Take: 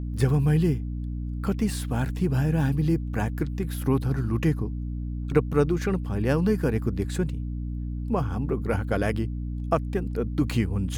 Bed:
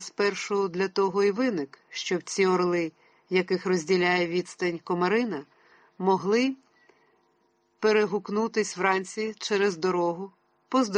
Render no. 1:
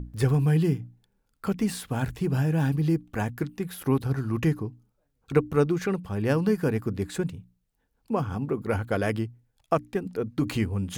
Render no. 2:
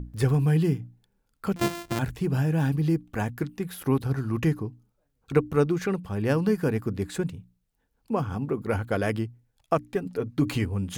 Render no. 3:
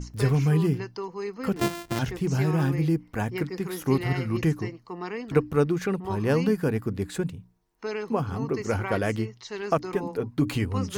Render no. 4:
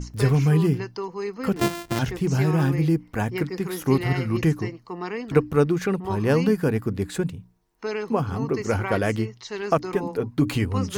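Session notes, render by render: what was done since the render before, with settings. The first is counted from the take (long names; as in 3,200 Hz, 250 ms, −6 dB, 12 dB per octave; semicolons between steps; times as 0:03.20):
mains-hum notches 60/120/180/240/300 Hz
0:01.56–0:01.99: samples sorted by size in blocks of 128 samples; 0:09.89–0:10.65: comb filter 7.1 ms, depth 43%
mix in bed −10 dB
level +3 dB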